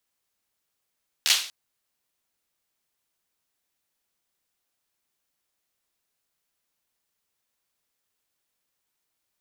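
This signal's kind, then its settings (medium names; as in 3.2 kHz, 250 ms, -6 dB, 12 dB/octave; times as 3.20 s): hand clap length 0.24 s, apart 13 ms, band 3.6 kHz, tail 0.44 s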